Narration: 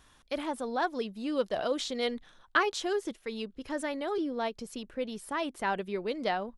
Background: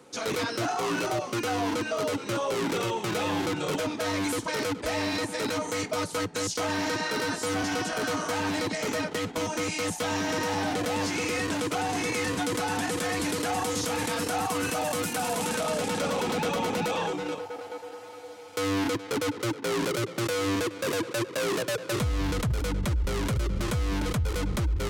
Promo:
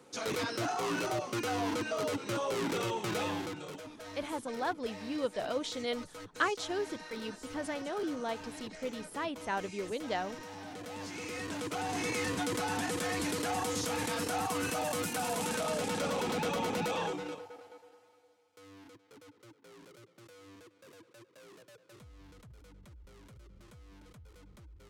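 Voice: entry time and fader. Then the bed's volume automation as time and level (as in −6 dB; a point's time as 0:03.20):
3.85 s, −4.0 dB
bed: 0:03.22 −5 dB
0:03.82 −17.5 dB
0:10.58 −17.5 dB
0:12.06 −5 dB
0:17.08 −5 dB
0:18.53 −27.5 dB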